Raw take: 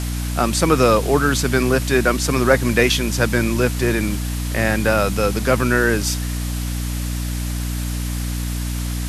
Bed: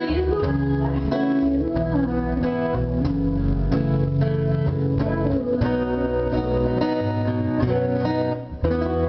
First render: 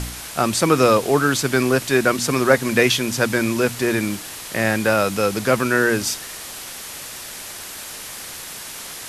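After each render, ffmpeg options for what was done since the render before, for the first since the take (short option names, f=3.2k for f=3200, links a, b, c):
-af "bandreject=f=60:t=h:w=4,bandreject=f=120:t=h:w=4,bandreject=f=180:t=h:w=4,bandreject=f=240:t=h:w=4,bandreject=f=300:t=h:w=4"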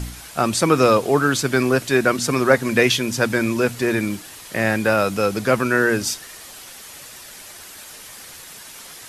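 -af "afftdn=nr=7:nf=-34"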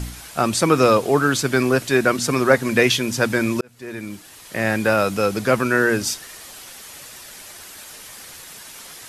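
-filter_complex "[0:a]asplit=2[a][b];[a]atrim=end=3.61,asetpts=PTS-STARTPTS,afade=t=out:st=3.606:d=0.004:c=hsin[c];[b]atrim=start=3.61,asetpts=PTS-STARTPTS,afade=t=in:d=1.21[d];[c][d]concat=n=2:v=0:a=1"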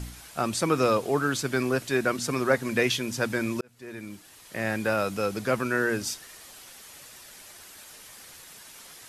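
-af "volume=-8dB"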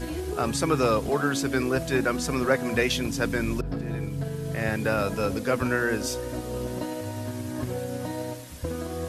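-filter_complex "[1:a]volume=-10.5dB[a];[0:a][a]amix=inputs=2:normalize=0"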